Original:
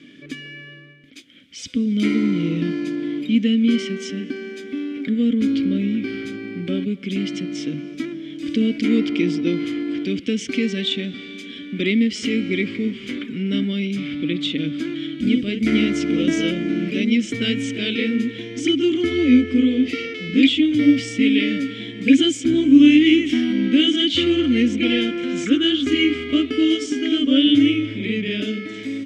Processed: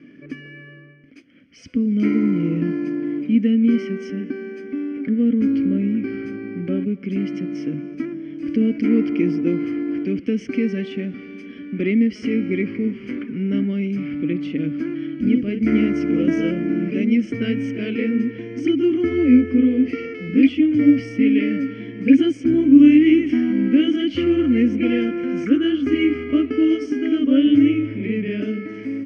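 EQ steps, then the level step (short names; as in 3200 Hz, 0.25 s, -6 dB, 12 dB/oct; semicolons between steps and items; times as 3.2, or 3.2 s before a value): running mean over 12 samples; +1.0 dB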